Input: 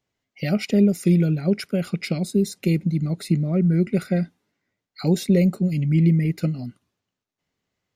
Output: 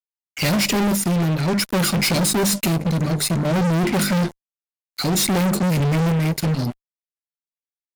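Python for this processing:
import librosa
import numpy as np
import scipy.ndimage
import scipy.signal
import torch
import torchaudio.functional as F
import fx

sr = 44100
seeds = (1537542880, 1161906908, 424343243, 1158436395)

y = fx.high_shelf(x, sr, hz=4100.0, db=11.5)
y = fx.hum_notches(y, sr, base_hz=50, count=7)
y = fx.rider(y, sr, range_db=10, speed_s=0.5)
y = fx.chopper(y, sr, hz=0.58, depth_pct=60, duty_pct=55)
y = fx.fuzz(y, sr, gain_db=37.0, gate_db=-44.0)
y = y * 10.0 ** (-4.0 / 20.0)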